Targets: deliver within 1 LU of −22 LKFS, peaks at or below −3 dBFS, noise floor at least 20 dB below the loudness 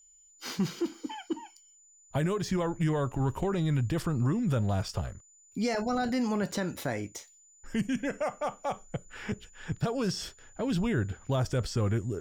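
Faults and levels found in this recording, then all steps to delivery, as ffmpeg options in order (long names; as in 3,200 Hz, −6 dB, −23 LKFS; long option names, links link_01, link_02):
interfering tone 7,000 Hz; level of the tone −57 dBFS; integrated loudness −31.5 LKFS; sample peak −18.0 dBFS; target loudness −22.0 LKFS
→ -af "bandreject=frequency=7000:width=30"
-af "volume=9.5dB"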